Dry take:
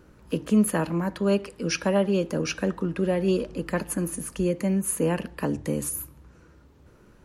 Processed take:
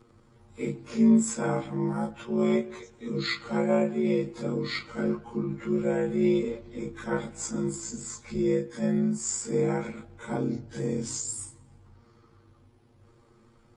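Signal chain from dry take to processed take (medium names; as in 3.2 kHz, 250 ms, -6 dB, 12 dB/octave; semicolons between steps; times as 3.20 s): frequency axis rescaled in octaves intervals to 91%; granular stretch 1.9×, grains 36 ms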